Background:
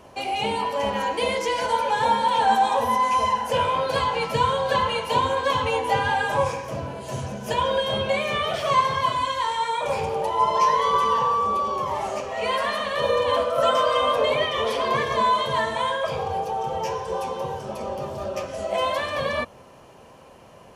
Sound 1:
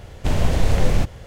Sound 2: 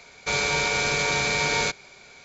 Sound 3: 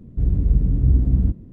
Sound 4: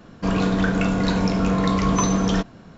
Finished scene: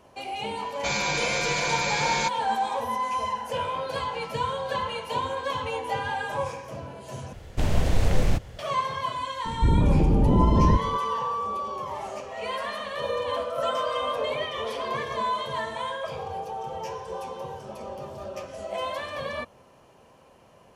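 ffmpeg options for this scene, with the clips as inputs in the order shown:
-filter_complex "[0:a]volume=0.447[s0];[2:a]aecho=1:1:5.8:0.92[s1];[3:a]aeval=exprs='0.531*sin(PI/2*3.98*val(0)/0.531)':c=same[s2];[s0]asplit=2[s3][s4];[s3]atrim=end=7.334[s5];[1:a]atrim=end=1.26,asetpts=PTS-STARTPTS,volume=0.631[s6];[s4]atrim=start=8.586[s7];[s1]atrim=end=2.24,asetpts=PTS-STARTPTS,volume=0.531,afade=t=in:d=0.004:c=hsin,afade=t=out:st=2.236:d=0.004:c=hsin,adelay=570[s8];[s2]atrim=end=1.52,asetpts=PTS-STARTPTS,volume=0.316,afade=t=in:d=0.004:c=hsin,afade=t=out:st=1.516:d=0.004:c=hsin,adelay=9450[s9];[s5][s6]acrossfade=d=0.004:c1=hsin:c2=hsin[s10];[s10][s7]acrossfade=d=0.004:c1=hsin:c2=hsin[s11];[s11][s8][s9]amix=inputs=3:normalize=0"

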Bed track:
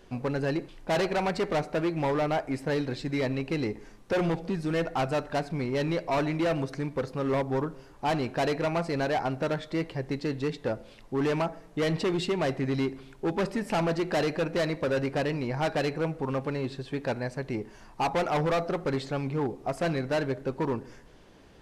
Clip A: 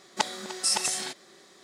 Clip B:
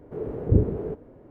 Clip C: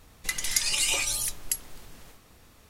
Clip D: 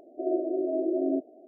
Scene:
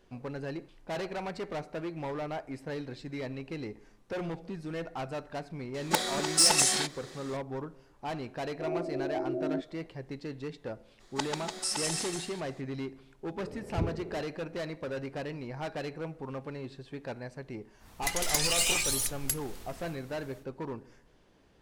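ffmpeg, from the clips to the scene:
-filter_complex "[1:a]asplit=2[s0][s1];[0:a]volume=0.355[s2];[s0]aeval=exprs='0.562*sin(PI/2*3.16*val(0)/0.562)':c=same[s3];[4:a]equalizer=f=430:t=o:w=0.77:g=-3[s4];[s1]aecho=1:1:139.9|291.5:0.631|0.501[s5];[3:a]aeval=exprs='clip(val(0),-1,0.0501)':c=same[s6];[s3]atrim=end=1.63,asetpts=PTS-STARTPTS,volume=0.355,afade=t=in:d=0.004:c=hsin,afade=t=out:st=1.626:d=0.004:c=hsin,adelay=5740[s7];[s4]atrim=end=1.47,asetpts=PTS-STARTPTS,volume=0.596,afade=t=in:d=0.004:c=hsin,afade=t=out:st=1.466:d=0.004:c=hsin,adelay=8410[s8];[s5]atrim=end=1.63,asetpts=PTS-STARTPTS,volume=0.422,afade=t=in:d=0.02,afade=t=out:st=1.61:d=0.02,adelay=10990[s9];[2:a]atrim=end=1.3,asetpts=PTS-STARTPTS,volume=0.224,afade=t=in:d=0.004:c=hsin,afade=t=out:st=1.296:d=0.004:c=hsin,adelay=13260[s10];[s6]atrim=end=2.69,asetpts=PTS-STARTPTS,volume=0.944,afade=t=in:d=0.1,afade=t=out:st=2.59:d=0.1,adelay=17780[s11];[s2][s7][s8][s9][s10][s11]amix=inputs=6:normalize=0"

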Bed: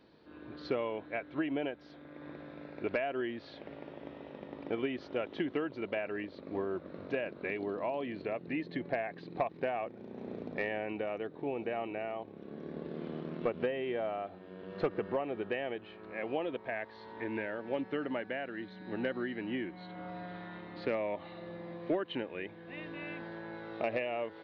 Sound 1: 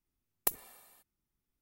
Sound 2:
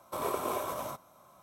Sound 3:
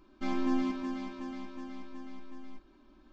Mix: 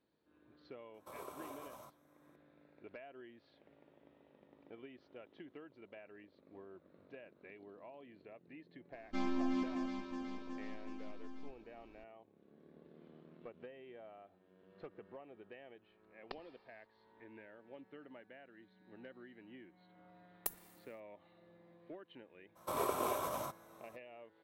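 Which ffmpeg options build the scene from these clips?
-filter_complex "[2:a]asplit=2[s0][s1];[1:a]asplit=2[s2][s3];[0:a]volume=0.112[s4];[3:a]alimiter=limit=0.0668:level=0:latency=1:release=71[s5];[s2]aresample=11025,aresample=44100[s6];[s3]acrusher=bits=8:mix=0:aa=0.5[s7];[s0]atrim=end=1.42,asetpts=PTS-STARTPTS,volume=0.15,afade=t=in:d=0.004:c=hsin,afade=t=out:st=1.416:d=0.004:c=hsin,adelay=940[s8];[s5]atrim=end=3.12,asetpts=PTS-STARTPTS,volume=0.668,afade=t=in:d=0.004:c=hsin,afade=t=out:st=3.116:d=0.004:c=hsin,adelay=8920[s9];[s6]atrim=end=1.61,asetpts=PTS-STARTPTS,volume=0.355,afade=t=in:d=0.004:c=hsin,afade=t=out:st=1.606:d=0.004:c=hsin,adelay=15840[s10];[s7]atrim=end=1.61,asetpts=PTS-STARTPTS,volume=0.355,afade=t=in:d=0.004:c=hsin,afade=t=out:st=1.606:d=0.004:c=hsin,adelay=19990[s11];[s1]atrim=end=1.42,asetpts=PTS-STARTPTS,volume=0.708,afade=t=in:d=0.02,afade=t=out:st=1.4:d=0.02,adelay=22550[s12];[s4][s8][s9][s10][s11][s12]amix=inputs=6:normalize=0"

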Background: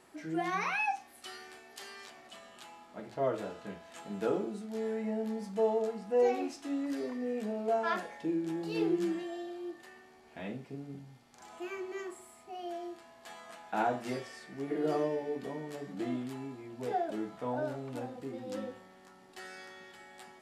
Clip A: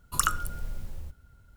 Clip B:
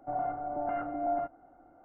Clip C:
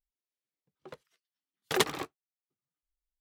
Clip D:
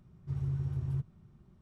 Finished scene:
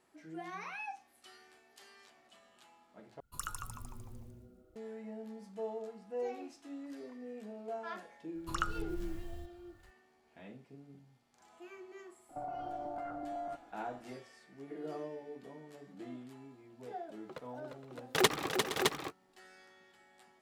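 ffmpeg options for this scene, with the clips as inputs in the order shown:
-filter_complex "[1:a]asplit=2[s0][s1];[0:a]volume=0.282[s2];[s0]asplit=7[s3][s4][s5][s6][s7][s8][s9];[s4]adelay=151,afreqshift=-130,volume=0.562[s10];[s5]adelay=302,afreqshift=-260,volume=0.275[s11];[s6]adelay=453,afreqshift=-390,volume=0.135[s12];[s7]adelay=604,afreqshift=-520,volume=0.0661[s13];[s8]adelay=755,afreqshift=-650,volume=0.0324[s14];[s9]adelay=906,afreqshift=-780,volume=0.0158[s15];[s3][s10][s11][s12][s13][s14][s15]amix=inputs=7:normalize=0[s16];[s1]acrossover=split=5400[s17][s18];[s18]acompressor=threshold=0.00282:ratio=4:attack=1:release=60[s19];[s17][s19]amix=inputs=2:normalize=0[s20];[2:a]acompressor=threshold=0.0141:ratio=6:attack=3.2:release=140:knee=1:detection=peak[s21];[3:a]aecho=1:1:350|466|613:0.501|0.2|0.631[s22];[s2]asplit=2[s23][s24];[s23]atrim=end=3.204[s25];[s16]atrim=end=1.56,asetpts=PTS-STARTPTS,volume=0.158[s26];[s24]atrim=start=4.756[s27];[s20]atrim=end=1.56,asetpts=PTS-STARTPTS,volume=0.422,afade=t=in:d=0.004:c=hsin,afade=t=out:st=1.556:d=0.004:c=hsin,adelay=8350[s28];[s21]atrim=end=1.84,asetpts=PTS-STARTPTS,volume=0.891,afade=t=in:d=0.004:c=hsin,afade=t=out:st=1.836:d=0.004:c=hsin,adelay=12290[s29];[s22]atrim=end=3.2,asetpts=PTS-STARTPTS,volume=0.944,afade=t=in:d=0.004:c=hsin,afade=t=out:st=3.196:d=0.004:c=hsin,adelay=16440[s30];[s25][s26]acrossfade=d=0.004:c1=hsin:c2=hsin[s31];[s31][s27]acrossfade=d=0.004:c1=hsin:c2=hsin[s32];[s32][s28][s29][s30]amix=inputs=4:normalize=0"

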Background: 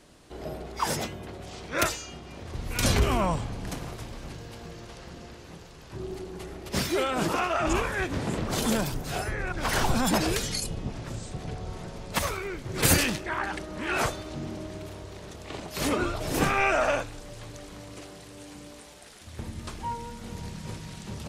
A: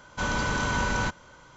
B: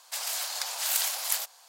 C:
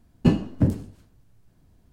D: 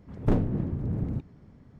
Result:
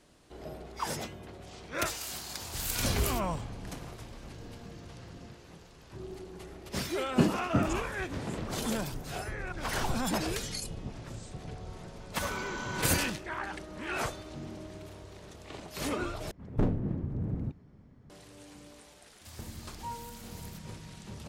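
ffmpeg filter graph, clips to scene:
-filter_complex "[2:a]asplit=2[s0][s1];[4:a]asplit=2[s2][s3];[0:a]volume=0.473[s4];[s2]alimiter=level_in=1.41:limit=0.0631:level=0:latency=1:release=71,volume=0.708[s5];[3:a]highpass=f=230:p=1[s6];[1:a]highpass=f=150:w=0.5412,highpass=f=150:w=1.3066[s7];[s1]acompressor=threshold=0.0224:ratio=6:attack=3.2:release=140:knee=1:detection=peak[s8];[s4]asplit=2[s9][s10];[s9]atrim=end=16.314[s11];[s3]atrim=end=1.79,asetpts=PTS-STARTPTS,volume=0.631[s12];[s10]atrim=start=18.096[s13];[s0]atrim=end=1.68,asetpts=PTS-STARTPTS,volume=0.398,afade=t=in:d=0.004:c=hsin,afade=t=out:st=1.676:d=0.004:c=hsin,adelay=1740[s14];[s5]atrim=end=1.79,asetpts=PTS-STARTPTS,volume=0.158,afade=t=in:d=0.004:c=hsin,afade=t=out:st=1.786:d=0.004:c=hsin,adelay=4140[s15];[s6]atrim=end=1.92,asetpts=PTS-STARTPTS,volume=0.708,afade=t=in:d=0.004:c=hsin,afade=t=out:st=1.916:d=0.004:c=hsin,adelay=6930[s16];[s7]atrim=end=1.56,asetpts=PTS-STARTPTS,volume=0.316,afade=t=in:d=0.004:c=hsin,afade=t=out:st=1.556:d=0.004:c=hsin,adelay=12000[s17];[s8]atrim=end=1.68,asetpts=PTS-STARTPTS,volume=0.168,afade=t=in:d=0.004:c=hsin,afade=t=out:st=1.676:d=0.004:c=hsin,adelay=19130[s18];[s11][s12]acrossfade=d=0.004:c1=hsin:c2=hsin[s19];[s19][s13]acrossfade=d=0.004:c1=hsin:c2=hsin[s20];[s20][s14][s15][s16][s17][s18]amix=inputs=6:normalize=0"

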